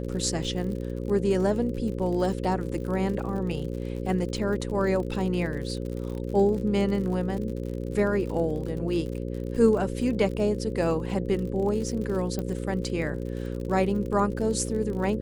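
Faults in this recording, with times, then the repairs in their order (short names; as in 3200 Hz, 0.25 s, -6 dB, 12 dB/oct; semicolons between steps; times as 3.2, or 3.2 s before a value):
buzz 60 Hz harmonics 9 -32 dBFS
crackle 57/s -34 dBFS
12.39 pop -18 dBFS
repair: de-click; de-hum 60 Hz, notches 9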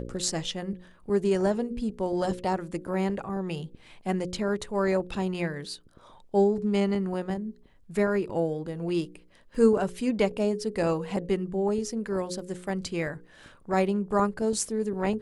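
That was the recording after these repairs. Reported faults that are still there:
12.39 pop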